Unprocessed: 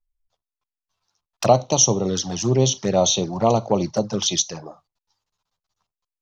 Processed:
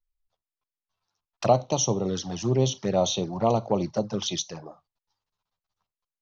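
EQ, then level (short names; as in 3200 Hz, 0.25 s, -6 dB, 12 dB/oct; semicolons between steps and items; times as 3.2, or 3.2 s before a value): air absorption 100 m; -4.5 dB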